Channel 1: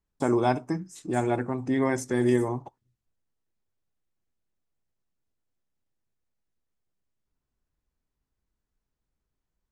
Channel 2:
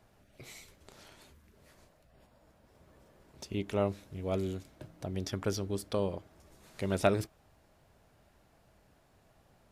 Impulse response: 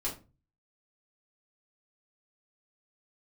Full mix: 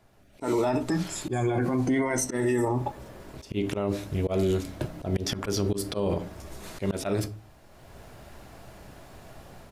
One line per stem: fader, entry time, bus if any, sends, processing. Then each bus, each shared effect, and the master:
0.0 dB, 0.20 s, send -19.5 dB, drifting ripple filter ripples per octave 1.9, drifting -0.53 Hz, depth 14 dB; flange 1 Hz, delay 9.3 ms, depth 1.8 ms, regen -52%
+1.0 dB, 0.00 s, send -11.5 dB, none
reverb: on, RT60 0.30 s, pre-delay 3 ms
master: level rider gain up to 15 dB; slow attack 160 ms; peak limiter -17.5 dBFS, peak gain reduction 14.5 dB

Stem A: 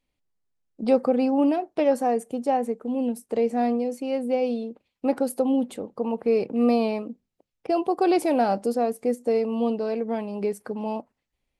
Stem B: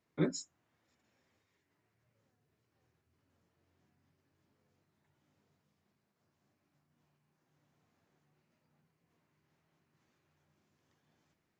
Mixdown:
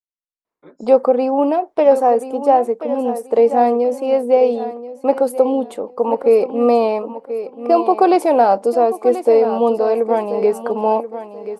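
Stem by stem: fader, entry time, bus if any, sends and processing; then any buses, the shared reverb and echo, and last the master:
-6.0 dB, 0.00 s, no send, echo send -12.5 dB, expander -40 dBFS
-13.0 dB, 0.45 s, no send, no echo send, level rider gain up to 16 dB; auto duck -18 dB, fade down 0.30 s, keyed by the first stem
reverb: none
echo: feedback delay 1033 ms, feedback 21%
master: graphic EQ 125/500/1000 Hz -11/+7/+10 dB; level rider gain up to 11.5 dB

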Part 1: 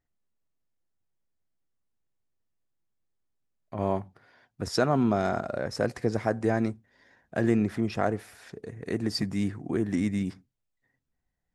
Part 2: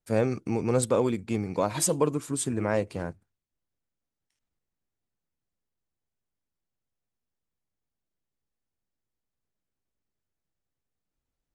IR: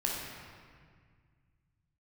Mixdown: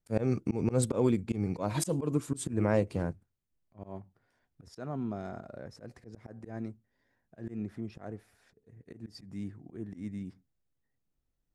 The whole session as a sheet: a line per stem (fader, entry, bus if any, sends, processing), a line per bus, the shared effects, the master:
-17.0 dB, 0.00 s, no send, none
-4.5 dB, 0.00 s, no send, none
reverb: none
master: slow attack 121 ms; bass shelf 450 Hz +8 dB

